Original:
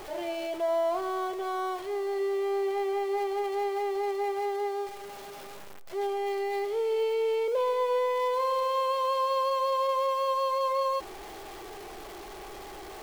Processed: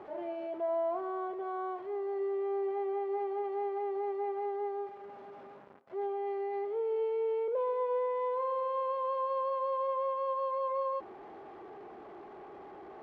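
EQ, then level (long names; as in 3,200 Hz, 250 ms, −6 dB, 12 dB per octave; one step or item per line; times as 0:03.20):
high-pass filter 130 Hz 12 dB per octave
low-pass filter 1,300 Hz 12 dB per octave
parametric band 240 Hz +4.5 dB 0.36 octaves
−4.5 dB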